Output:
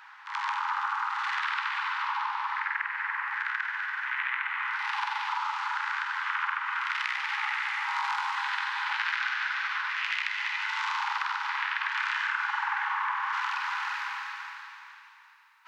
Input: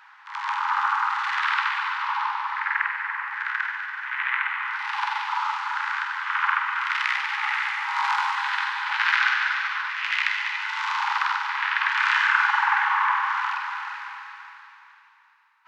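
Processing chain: treble shelf 2.5 kHz +2 dB, from 13.33 s +9.5 dB; compression 4:1, threshold -28 dBFS, peak gain reduction 12 dB

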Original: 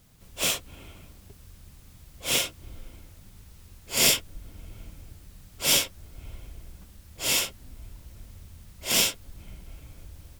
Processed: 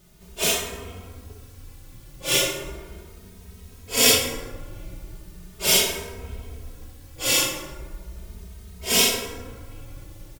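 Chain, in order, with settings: peaking EQ 400 Hz +6.5 dB 0.59 oct; plate-style reverb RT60 1.5 s, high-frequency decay 0.45×, DRR 1 dB; endless flanger 2.9 ms +0.37 Hz; trim +5.5 dB

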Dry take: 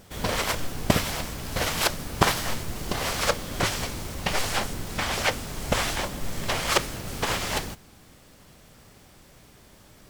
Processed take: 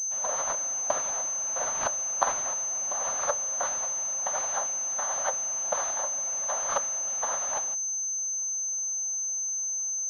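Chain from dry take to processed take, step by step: ladder high-pass 450 Hz, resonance 55%; static phaser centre 1 kHz, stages 4; class-D stage that switches slowly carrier 6.2 kHz; trim +5.5 dB

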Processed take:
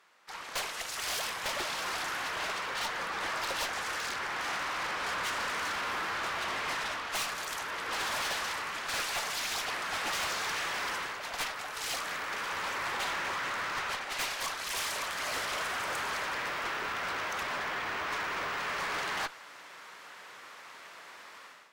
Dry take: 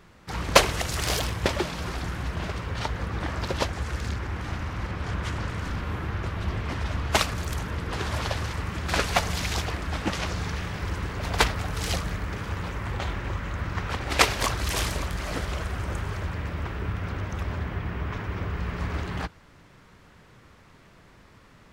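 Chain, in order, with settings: high-pass 770 Hz 12 dB/octave; level rider gain up to 15 dB; valve stage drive 26 dB, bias 0.35; trim -4.5 dB

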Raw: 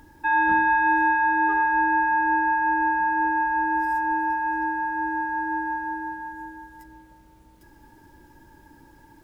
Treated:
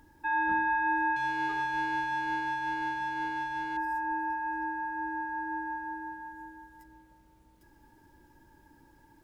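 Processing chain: 1.16–3.77 s: power-law waveshaper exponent 1.4; trim -8 dB

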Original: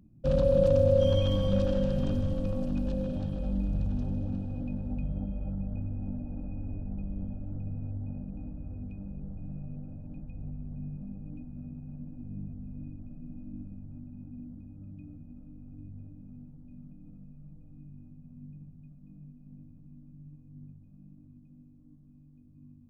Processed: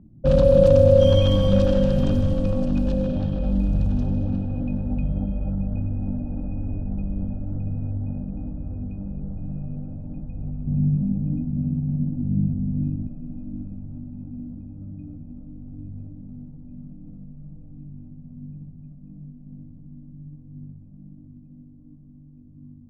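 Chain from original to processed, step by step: level-controlled noise filter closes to 800 Hz, open at -24 dBFS; 10.67–13.07 s: peaking EQ 160 Hz +11 dB 1.9 oct; trim +8.5 dB

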